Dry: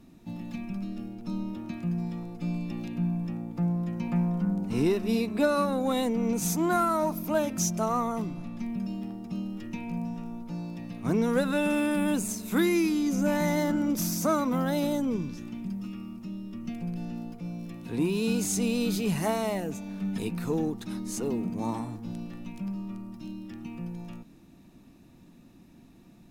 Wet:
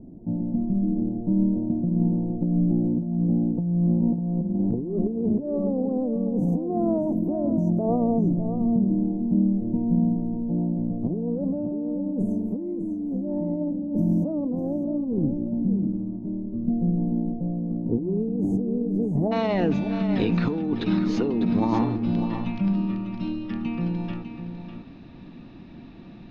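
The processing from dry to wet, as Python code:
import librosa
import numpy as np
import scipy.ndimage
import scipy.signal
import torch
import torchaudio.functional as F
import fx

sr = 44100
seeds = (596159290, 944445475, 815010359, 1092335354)

y = fx.cheby2_lowpass(x, sr, hz=fx.steps((0.0, 1300.0), (19.31, 7800.0)), order=4, stop_db=40)
y = fx.dynamic_eq(y, sr, hz=300.0, q=2.7, threshold_db=-42.0, ratio=4.0, max_db=4)
y = fx.over_compress(y, sr, threshold_db=-31.0, ratio=-1.0)
y = y + 10.0 ** (-9.0 / 20.0) * np.pad(y, (int(600 * sr / 1000.0), 0))[:len(y)]
y = y * librosa.db_to_amplitude(7.0)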